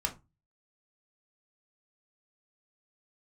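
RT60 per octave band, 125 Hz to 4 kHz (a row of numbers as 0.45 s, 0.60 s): 0.45 s, 0.35 s, 0.25 s, 0.25 s, 0.20 s, 0.15 s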